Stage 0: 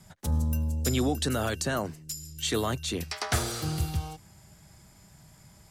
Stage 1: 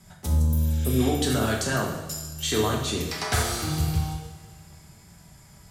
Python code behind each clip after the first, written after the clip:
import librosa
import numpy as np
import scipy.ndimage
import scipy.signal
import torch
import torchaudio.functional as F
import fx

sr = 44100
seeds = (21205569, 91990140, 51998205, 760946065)

y = fx.rev_double_slope(x, sr, seeds[0], early_s=0.93, late_s=2.9, knee_db=-18, drr_db=-2.0)
y = fx.spec_repair(y, sr, seeds[1], start_s=0.52, length_s=0.51, low_hz=1300.0, high_hz=7800.0, source='both')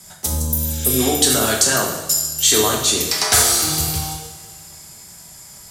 y = fx.bass_treble(x, sr, bass_db=-9, treble_db=11)
y = F.gain(torch.from_numpy(y), 7.0).numpy()